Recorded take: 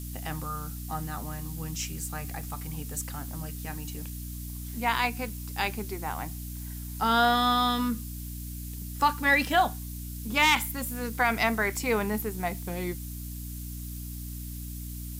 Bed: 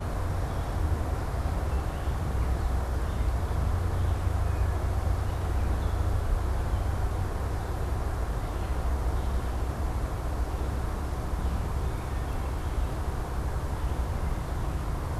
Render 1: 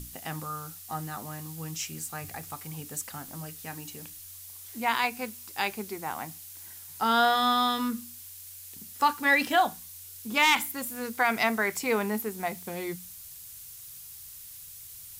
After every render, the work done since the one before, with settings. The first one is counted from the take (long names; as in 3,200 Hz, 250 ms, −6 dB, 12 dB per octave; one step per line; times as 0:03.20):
mains-hum notches 60/120/180/240/300 Hz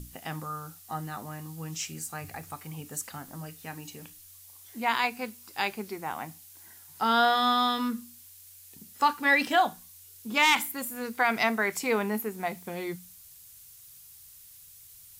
noise reduction from a noise print 6 dB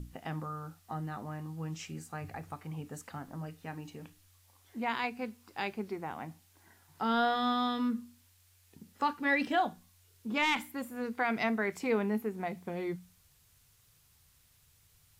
low-pass filter 1,400 Hz 6 dB per octave
dynamic equaliser 980 Hz, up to −6 dB, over −40 dBFS, Q 0.8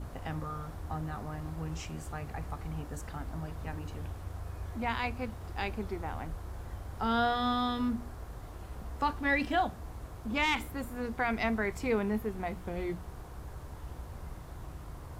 mix in bed −13.5 dB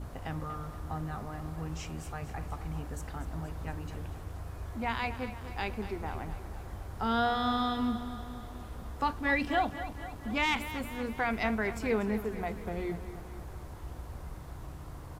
repeating echo 238 ms, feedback 59%, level −12.5 dB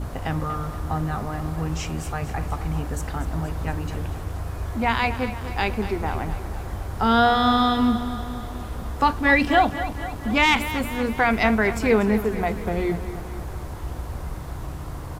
level +11 dB